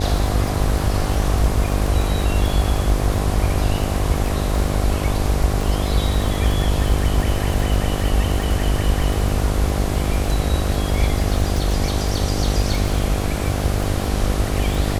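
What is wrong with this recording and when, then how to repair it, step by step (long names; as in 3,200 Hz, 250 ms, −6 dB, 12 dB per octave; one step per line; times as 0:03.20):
mains buzz 50 Hz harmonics 16 −23 dBFS
surface crackle 44 per second −23 dBFS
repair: click removal
hum removal 50 Hz, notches 16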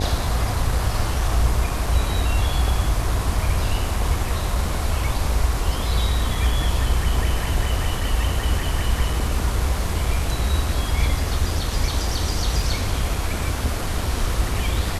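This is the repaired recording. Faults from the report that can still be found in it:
none of them is left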